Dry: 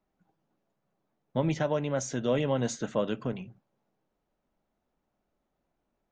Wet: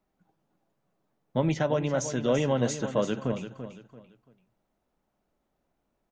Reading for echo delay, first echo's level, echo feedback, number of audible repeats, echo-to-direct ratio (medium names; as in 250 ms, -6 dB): 338 ms, -10.5 dB, 31%, 3, -10.0 dB